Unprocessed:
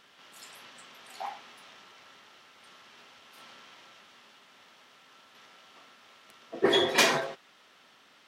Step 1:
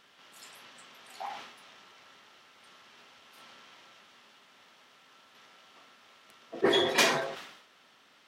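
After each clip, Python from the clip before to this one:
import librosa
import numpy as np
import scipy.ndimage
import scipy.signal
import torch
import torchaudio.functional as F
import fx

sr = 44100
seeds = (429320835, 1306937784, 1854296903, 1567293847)

y = fx.sustainer(x, sr, db_per_s=64.0)
y = F.gain(torch.from_numpy(y), -2.0).numpy()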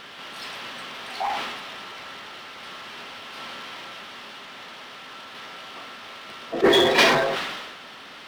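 y = scipy.signal.savgol_filter(x, 15, 4, mode='constant')
y = fx.power_curve(y, sr, exponent=0.7)
y = fx.sustainer(y, sr, db_per_s=37.0)
y = F.gain(torch.from_numpy(y), 5.0).numpy()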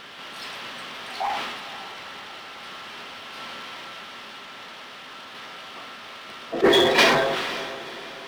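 y = fx.echo_diffused(x, sr, ms=506, feedback_pct=47, wet_db=-15.5)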